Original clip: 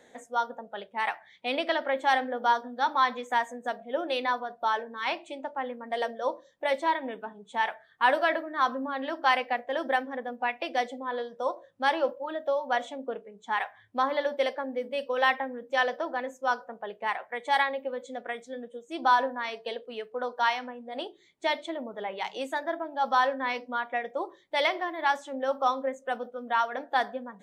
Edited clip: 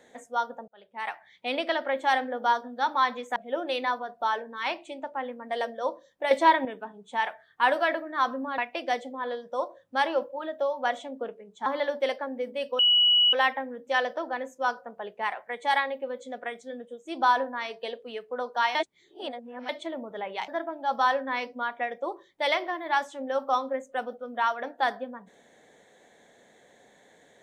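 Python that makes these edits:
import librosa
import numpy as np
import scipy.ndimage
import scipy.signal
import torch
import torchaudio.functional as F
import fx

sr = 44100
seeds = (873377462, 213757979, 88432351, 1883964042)

y = fx.edit(x, sr, fx.fade_in_span(start_s=0.68, length_s=0.89, curve='qsin'),
    fx.cut(start_s=3.36, length_s=0.41),
    fx.clip_gain(start_s=6.72, length_s=0.34, db=7.0),
    fx.cut(start_s=8.99, length_s=1.46),
    fx.cut(start_s=13.53, length_s=0.5),
    fx.insert_tone(at_s=15.16, length_s=0.54, hz=2930.0, db=-17.0),
    fx.reverse_span(start_s=20.58, length_s=0.94),
    fx.cut(start_s=22.31, length_s=0.3), tone=tone)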